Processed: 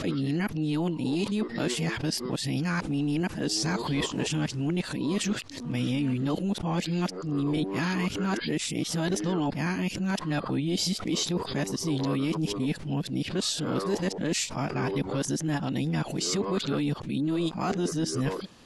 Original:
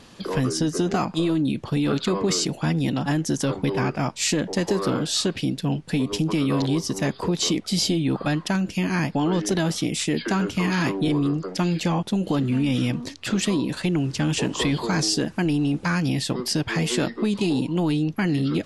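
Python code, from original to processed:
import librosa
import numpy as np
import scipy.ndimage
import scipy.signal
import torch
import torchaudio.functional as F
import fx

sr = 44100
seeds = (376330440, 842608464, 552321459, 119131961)

y = np.flip(x).copy()
y = fx.pre_swell(y, sr, db_per_s=94.0)
y = y * librosa.db_to_amplitude(-5.5)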